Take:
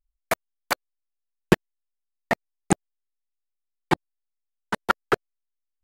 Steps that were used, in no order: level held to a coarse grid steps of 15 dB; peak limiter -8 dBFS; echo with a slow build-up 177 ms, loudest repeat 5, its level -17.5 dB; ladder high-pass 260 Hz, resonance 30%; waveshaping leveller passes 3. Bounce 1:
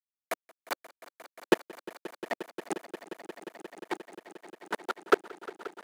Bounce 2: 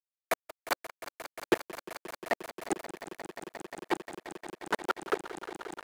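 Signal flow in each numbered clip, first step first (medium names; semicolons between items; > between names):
waveshaping leveller > ladder high-pass > level held to a coarse grid > peak limiter > echo with a slow build-up; echo with a slow build-up > level held to a coarse grid > peak limiter > ladder high-pass > waveshaping leveller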